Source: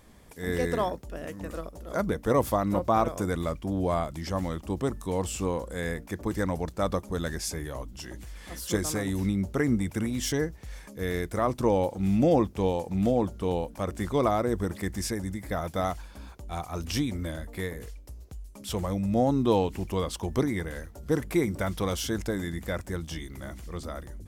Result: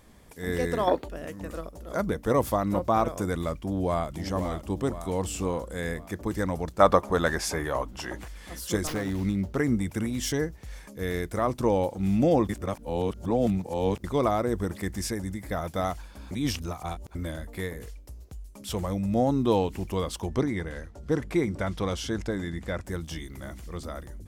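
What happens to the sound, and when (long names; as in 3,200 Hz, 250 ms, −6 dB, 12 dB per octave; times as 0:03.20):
0:00.88–0:01.08: gain on a spectral selection 250–4,700 Hz +12 dB
0:03.56–0:04.10: delay throw 520 ms, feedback 55%, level −8 dB
0:06.80–0:08.28: parametric band 1,000 Hz +12.5 dB 2.9 octaves
0:08.87–0:09.57: windowed peak hold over 5 samples
0:12.49–0:14.04: reverse
0:16.31–0:17.15: reverse
0:20.28–0:22.86: high-frequency loss of the air 55 metres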